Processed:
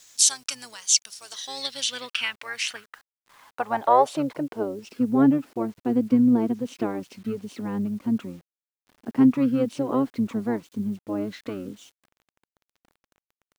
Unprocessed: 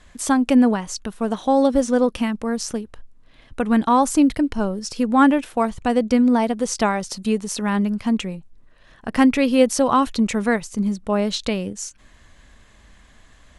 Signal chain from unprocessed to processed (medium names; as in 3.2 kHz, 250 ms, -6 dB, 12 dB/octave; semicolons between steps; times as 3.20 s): tilt EQ +3.5 dB/octave; harmony voices -12 st -5 dB; band-pass sweep 6.1 kHz -> 260 Hz, 1.18–5.14 s; word length cut 10-bit, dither none; trim +4.5 dB